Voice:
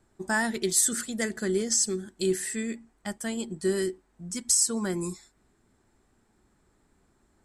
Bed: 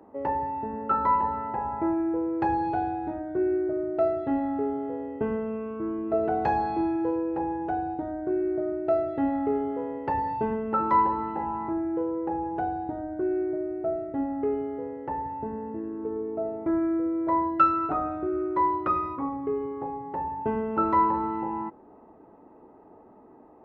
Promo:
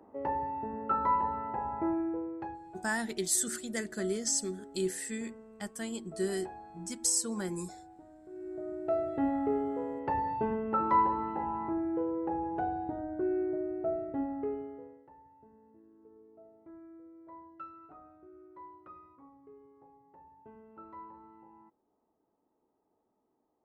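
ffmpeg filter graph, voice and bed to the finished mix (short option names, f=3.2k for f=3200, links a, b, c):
-filter_complex "[0:a]adelay=2550,volume=-6dB[a];[1:a]volume=13dB,afade=t=out:st=1.95:d=0.64:silence=0.141254,afade=t=in:st=8.3:d=0.87:silence=0.125893,afade=t=out:st=14.08:d=1.01:silence=0.0794328[b];[a][b]amix=inputs=2:normalize=0"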